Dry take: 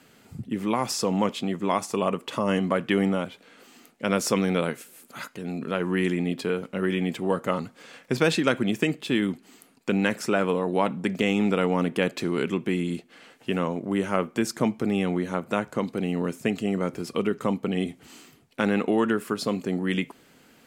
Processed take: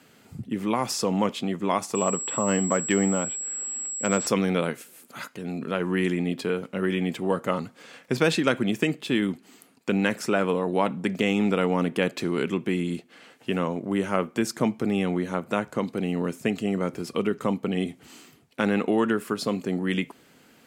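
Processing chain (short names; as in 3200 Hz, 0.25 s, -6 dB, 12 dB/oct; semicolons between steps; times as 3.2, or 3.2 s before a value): HPF 54 Hz; 1.95–4.27 pulse-width modulation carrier 7700 Hz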